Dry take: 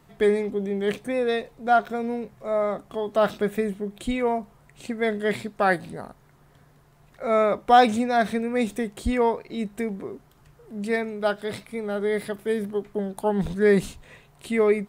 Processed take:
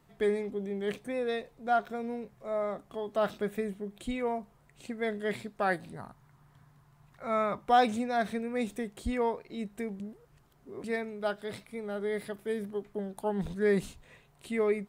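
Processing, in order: 5.95–7.68 ten-band EQ 125 Hz +7 dB, 500 Hz -7 dB, 1000 Hz +6 dB; 10–10.84 reverse; gain -8 dB

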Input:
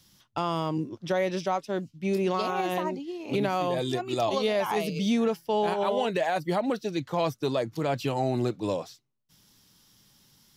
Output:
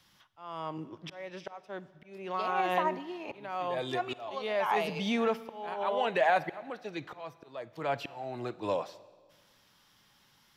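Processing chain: auto swell 0.751 s; three-band isolator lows -12 dB, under 580 Hz, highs -14 dB, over 3000 Hz; Schroeder reverb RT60 1.5 s, DRR 17 dB; gain +4.5 dB

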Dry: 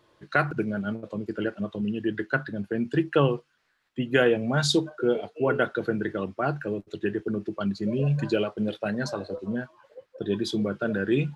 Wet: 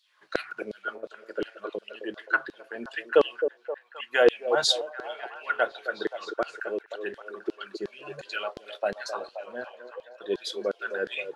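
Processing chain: LFO high-pass saw down 2.8 Hz 380–4400 Hz; delay with a stepping band-pass 0.263 s, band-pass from 440 Hz, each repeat 0.7 oct, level -7 dB; gain -2 dB

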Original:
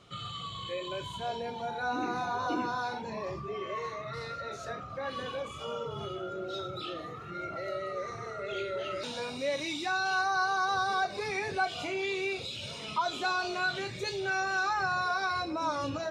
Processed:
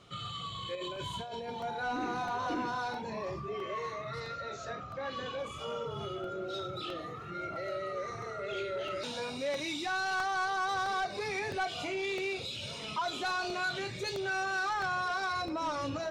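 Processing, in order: 0.75–1.49 negative-ratio compressor -39 dBFS, ratio -1; 4.2–5.4 elliptic low-pass 7400 Hz; soft clip -27.5 dBFS, distortion -15 dB; crackling interface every 0.66 s, samples 64, repeat, from 0.96

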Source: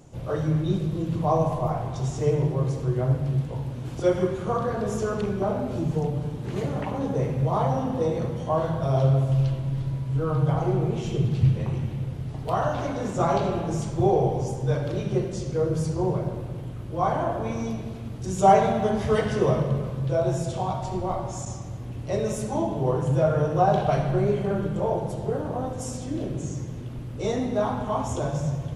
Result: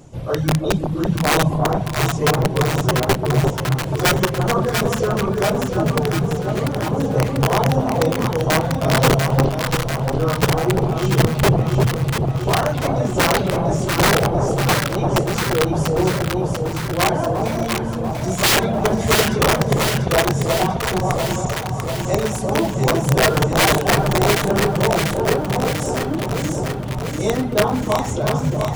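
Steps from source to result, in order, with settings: reverb removal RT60 0.83 s; wrapped overs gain 16.5 dB; echo with dull and thin repeats by turns 0.346 s, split 920 Hz, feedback 82%, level -3 dB; gain +6.5 dB

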